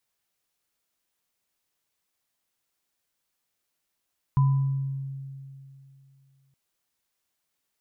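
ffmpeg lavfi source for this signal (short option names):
-f lavfi -i "aevalsrc='0.158*pow(10,-3*t/2.71)*sin(2*PI*136*t)+0.0355*pow(10,-3*t/0.77)*sin(2*PI*1000*t)':d=2.17:s=44100"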